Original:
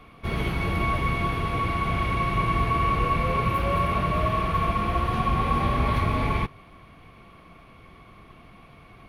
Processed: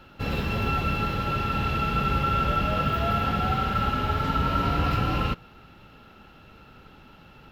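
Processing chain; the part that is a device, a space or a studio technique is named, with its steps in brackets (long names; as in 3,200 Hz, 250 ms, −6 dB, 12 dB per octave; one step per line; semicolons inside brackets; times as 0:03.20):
nightcore (speed change +21%)
level −1 dB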